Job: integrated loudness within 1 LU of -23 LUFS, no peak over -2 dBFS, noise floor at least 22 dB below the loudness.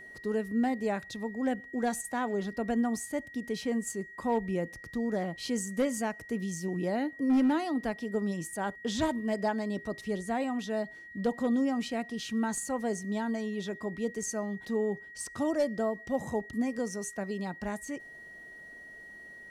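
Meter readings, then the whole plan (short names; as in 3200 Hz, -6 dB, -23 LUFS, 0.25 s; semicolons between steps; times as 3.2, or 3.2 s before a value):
clipped 0.3%; flat tops at -21.0 dBFS; steady tone 1900 Hz; tone level -46 dBFS; loudness -32.5 LUFS; peak -21.0 dBFS; loudness target -23.0 LUFS
-> clip repair -21 dBFS; notch 1900 Hz, Q 30; gain +9.5 dB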